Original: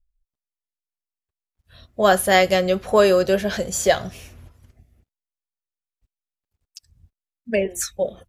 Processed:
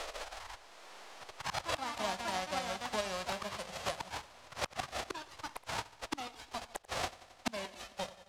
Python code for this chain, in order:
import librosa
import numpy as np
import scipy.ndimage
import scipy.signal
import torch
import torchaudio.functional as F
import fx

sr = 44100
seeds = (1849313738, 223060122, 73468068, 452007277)

p1 = fx.envelope_flatten(x, sr, power=0.1)
p2 = fx.level_steps(p1, sr, step_db=12)
p3 = p1 + (p2 * librosa.db_to_amplitude(0.5))
p4 = fx.gate_flip(p3, sr, shuts_db=-32.0, range_db=-41)
p5 = fx.peak_eq(p4, sr, hz=740.0, db=9.5, octaves=1.1)
p6 = p5 + fx.echo_feedback(p5, sr, ms=89, feedback_pct=59, wet_db=-19.0, dry=0)
p7 = fx.echo_pitch(p6, sr, ms=200, semitones=4, count=2, db_per_echo=-3.0)
p8 = scipy.signal.sosfilt(scipy.signal.butter(2, 5000.0, 'lowpass', fs=sr, output='sos'), p7)
p9 = fx.band_squash(p8, sr, depth_pct=70)
y = p9 * librosa.db_to_amplitude(16.0)